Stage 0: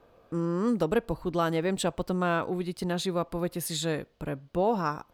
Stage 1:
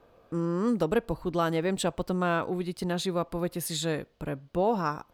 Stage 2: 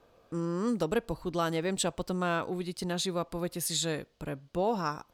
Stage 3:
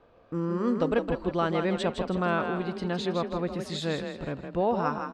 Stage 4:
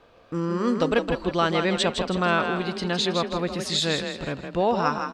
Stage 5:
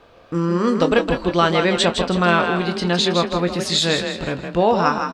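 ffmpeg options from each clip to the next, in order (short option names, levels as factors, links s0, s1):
-af anull
-af "equalizer=f=6500:w=0.59:g=7.5,volume=0.668"
-filter_complex "[0:a]lowpass=2900,asplit=2[s0][s1];[s1]asplit=5[s2][s3][s4][s5][s6];[s2]adelay=161,afreqshift=30,volume=0.473[s7];[s3]adelay=322,afreqshift=60,volume=0.184[s8];[s4]adelay=483,afreqshift=90,volume=0.0716[s9];[s5]adelay=644,afreqshift=120,volume=0.0282[s10];[s6]adelay=805,afreqshift=150,volume=0.011[s11];[s7][s8][s9][s10][s11]amix=inputs=5:normalize=0[s12];[s0][s12]amix=inputs=2:normalize=0,volume=1.41"
-af "equalizer=f=6100:w=0.32:g=11,volume=1.33"
-filter_complex "[0:a]asplit=2[s0][s1];[s1]adelay=23,volume=0.316[s2];[s0][s2]amix=inputs=2:normalize=0,volume=1.88"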